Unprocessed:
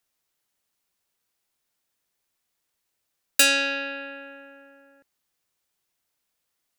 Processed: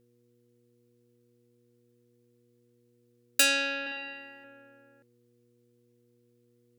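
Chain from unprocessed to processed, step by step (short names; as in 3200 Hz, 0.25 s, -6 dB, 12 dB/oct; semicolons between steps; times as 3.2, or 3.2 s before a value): buzz 120 Hz, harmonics 4, -62 dBFS 0 dB/oct; 3.81–4.44 flutter echo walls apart 9.1 m, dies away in 0.93 s; gain -5 dB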